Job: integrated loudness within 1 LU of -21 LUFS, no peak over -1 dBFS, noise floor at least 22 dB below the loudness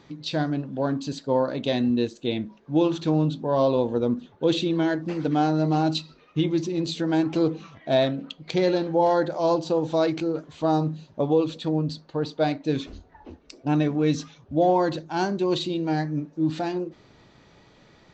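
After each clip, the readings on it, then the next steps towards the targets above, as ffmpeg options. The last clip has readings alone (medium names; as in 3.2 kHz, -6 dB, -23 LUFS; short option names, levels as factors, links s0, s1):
loudness -25.0 LUFS; peak level -10.0 dBFS; loudness target -21.0 LUFS
-> -af "volume=1.58"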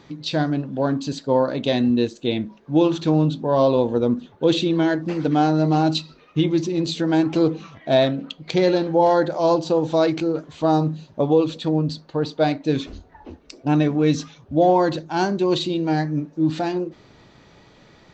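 loudness -21.0 LUFS; peak level -6.5 dBFS; noise floor -52 dBFS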